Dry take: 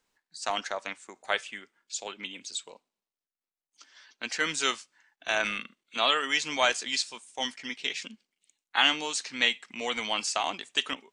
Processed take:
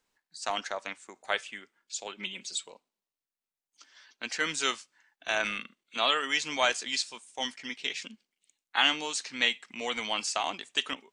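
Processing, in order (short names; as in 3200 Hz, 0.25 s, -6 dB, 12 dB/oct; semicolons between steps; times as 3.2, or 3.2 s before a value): 2.17–2.67 comb 5.3 ms, depth 98%; gain -1.5 dB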